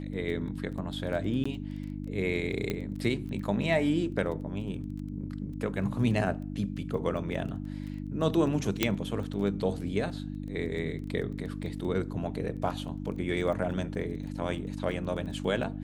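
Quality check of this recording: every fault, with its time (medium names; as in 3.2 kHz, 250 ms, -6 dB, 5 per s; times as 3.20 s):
crackle 14 per s -38 dBFS
hum 50 Hz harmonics 6 -37 dBFS
1.44–1.46 s: dropout 15 ms
2.70 s: pop -18 dBFS
8.83 s: pop -8 dBFS
12.63 s: dropout 3.7 ms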